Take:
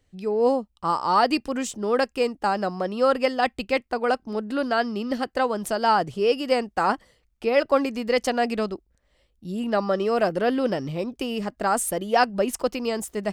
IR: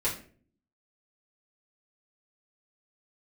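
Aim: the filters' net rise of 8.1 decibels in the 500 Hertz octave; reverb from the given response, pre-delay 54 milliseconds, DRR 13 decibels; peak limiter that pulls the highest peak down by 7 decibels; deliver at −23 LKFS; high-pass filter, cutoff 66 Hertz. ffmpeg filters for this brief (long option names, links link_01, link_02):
-filter_complex "[0:a]highpass=66,equalizer=frequency=500:width_type=o:gain=9,alimiter=limit=-9dB:level=0:latency=1,asplit=2[link_01][link_02];[1:a]atrim=start_sample=2205,adelay=54[link_03];[link_02][link_03]afir=irnorm=-1:irlink=0,volume=-20.5dB[link_04];[link_01][link_04]amix=inputs=2:normalize=0,volume=-3dB"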